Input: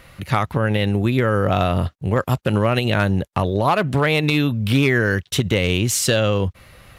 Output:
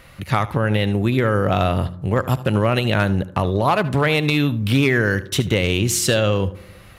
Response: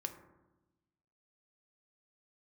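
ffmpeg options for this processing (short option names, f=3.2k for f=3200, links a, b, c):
-filter_complex "[0:a]asplit=2[a][b];[1:a]atrim=start_sample=2205,adelay=75[c];[b][c]afir=irnorm=-1:irlink=0,volume=-14.5dB[d];[a][d]amix=inputs=2:normalize=0"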